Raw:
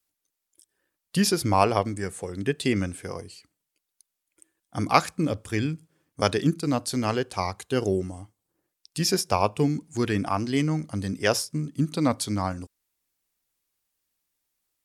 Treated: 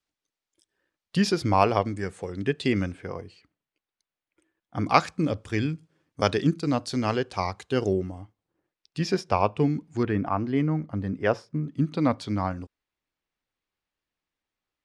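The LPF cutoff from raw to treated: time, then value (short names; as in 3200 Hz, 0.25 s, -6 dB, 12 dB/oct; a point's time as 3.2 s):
4700 Hz
from 2.92 s 2800 Hz
from 4.86 s 5300 Hz
from 7.93 s 3200 Hz
from 10.03 s 1700 Hz
from 11.68 s 3100 Hz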